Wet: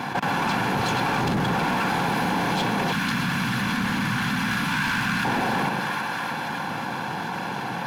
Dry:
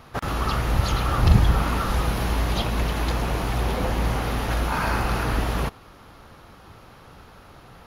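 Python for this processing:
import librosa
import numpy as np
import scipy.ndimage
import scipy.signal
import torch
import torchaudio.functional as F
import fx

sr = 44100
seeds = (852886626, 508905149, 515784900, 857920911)

y = fx.lower_of_two(x, sr, delay_ms=1.2)
y = scipy.signal.sosfilt(scipy.signal.butter(4, 160.0, 'highpass', fs=sr, output='sos'), y)
y = fx.high_shelf(y, sr, hz=4200.0, db=-11.5)
y = fx.notch_comb(y, sr, f0_hz=630.0)
y = fx.echo_split(y, sr, split_hz=940.0, low_ms=111, high_ms=319, feedback_pct=52, wet_db=-10)
y = np.clip(y, -10.0 ** (-27.0 / 20.0), 10.0 ** (-27.0 / 20.0))
y = fx.band_shelf(y, sr, hz=540.0, db=-14.5, octaves=1.7, at=(2.92, 5.25))
y = fx.env_flatten(y, sr, amount_pct=70)
y = y * librosa.db_to_amplitude(5.5)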